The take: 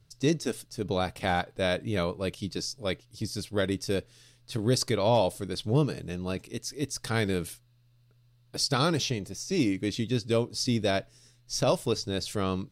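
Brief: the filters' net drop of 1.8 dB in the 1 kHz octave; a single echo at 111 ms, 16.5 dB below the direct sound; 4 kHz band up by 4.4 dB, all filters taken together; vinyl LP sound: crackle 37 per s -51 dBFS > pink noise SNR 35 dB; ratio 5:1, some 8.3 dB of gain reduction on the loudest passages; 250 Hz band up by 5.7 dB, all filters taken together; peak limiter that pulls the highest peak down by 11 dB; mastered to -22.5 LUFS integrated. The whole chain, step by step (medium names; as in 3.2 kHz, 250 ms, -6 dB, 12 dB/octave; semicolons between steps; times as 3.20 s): peaking EQ 250 Hz +7.5 dB; peaking EQ 1 kHz -3.5 dB; peaking EQ 4 kHz +5.5 dB; compression 5:1, threshold -25 dBFS; peak limiter -26.5 dBFS; delay 111 ms -16.5 dB; crackle 37 per s -51 dBFS; pink noise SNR 35 dB; trim +14 dB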